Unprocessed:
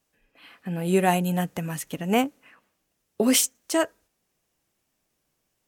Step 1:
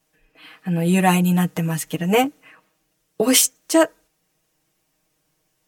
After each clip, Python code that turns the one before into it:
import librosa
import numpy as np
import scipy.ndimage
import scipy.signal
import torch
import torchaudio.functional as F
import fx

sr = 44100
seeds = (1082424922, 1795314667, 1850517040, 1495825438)

y = x + 1.0 * np.pad(x, (int(6.4 * sr / 1000.0), 0))[:len(x)]
y = y * 10.0 ** (3.0 / 20.0)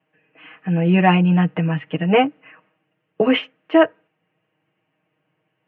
y = scipy.signal.sosfilt(scipy.signal.cheby1(5, 1.0, [100.0, 2900.0], 'bandpass', fs=sr, output='sos'), x)
y = y * 10.0 ** (2.5 / 20.0)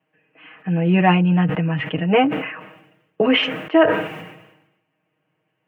y = fx.sustainer(x, sr, db_per_s=60.0)
y = y * 10.0 ** (-1.0 / 20.0)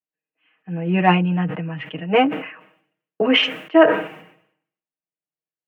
y = scipy.signal.sosfilt(scipy.signal.butter(2, 150.0, 'highpass', fs=sr, output='sos'), x)
y = fx.cheby_harmonics(y, sr, harmonics=(6,), levels_db=(-43,), full_scale_db=-1.5)
y = fx.band_widen(y, sr, depth_pct=70)
y = y * 10.0 ** (-2.0 / 20.0)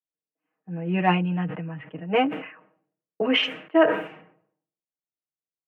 y = fx.env_lowpass(x, sr, base_hz=760.0, full_db=-14.5)
y = y * 10.0 ** (-5.5 / 20.0)